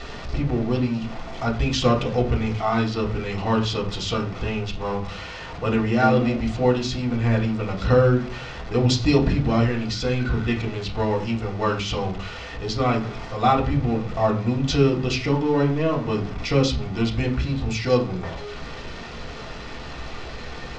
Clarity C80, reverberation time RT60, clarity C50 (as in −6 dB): 16.0 dB, 0.40 s, 11.5 dB